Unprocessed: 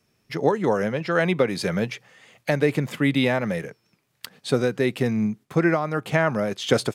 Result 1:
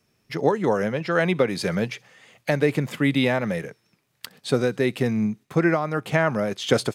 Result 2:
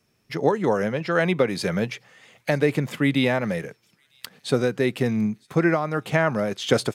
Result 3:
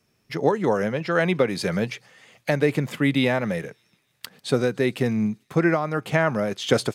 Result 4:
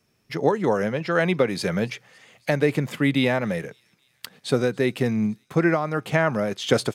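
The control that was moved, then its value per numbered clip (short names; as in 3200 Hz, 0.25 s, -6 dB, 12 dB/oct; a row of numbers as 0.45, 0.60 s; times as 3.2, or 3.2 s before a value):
thin delay, time: 64, 957, 146, 278 ms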